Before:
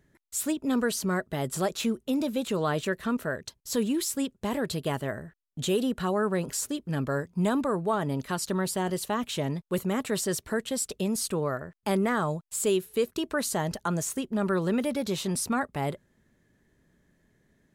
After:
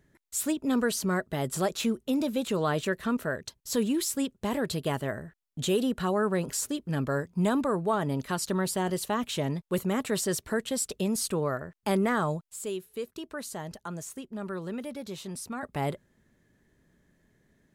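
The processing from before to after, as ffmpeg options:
-filter_complex "[0:a]asplit=3[a][b][c];[a]atrim=end=12.512[d];[b]atrim=start=12.508:end=15.632,asetpts=PTS-STARTPTS,volume=-9dB[e];[c]atrim=start=15.628[f];[d][e]acrossfade=d=0.004:c1=hsin:c2=hsin[g];[g][f]acrossfade=d=0.004:c1=hsin:c2=hsin"

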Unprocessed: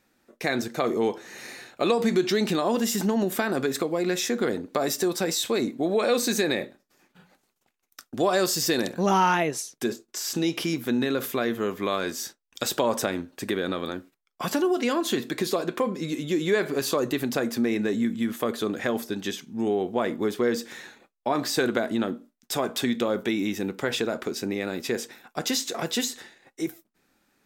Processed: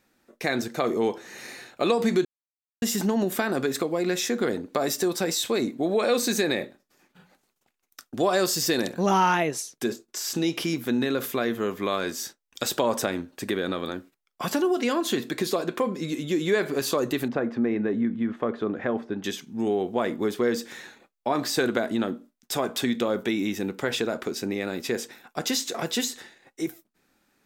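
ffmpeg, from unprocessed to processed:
-filter_complex "[0:a]asettb=1/sr,asplit=3[a][b][c];[a]atrim=end=17.284[d];[b]atrim=start=17.28:end=19.24,asetpts=PTS-STARTPTS,afade=t=in:d=0.004:c=qsin,afade=t=out:st=1.956:d=0.004:c=qsin,lowpass=1.7k[e];[c]atrim=start=19.236[f];[d][e]acrossfade=d=0.004:c1=hsin:c2=qsin[g];[g][f]acrossfade=d=0.004:c1=qsin:c2=hsin,asplit=3[h][i][j];[h]atrim=end=2.25,asetpts=PTS-STARTPTS,afade=t=out:st=2.246:d=0.004:c=hsin[k];[i]atrim=start=2.25:end=2.82,asetpts=PTS-STARTPTS,volume=0[l];[j]atrim=start=2.82,asetpts=PTS-STARTPTS,afade=t=in:d=0.004:c=hsin[m];[k][l][m]concat=n=3:v=0:a=1"

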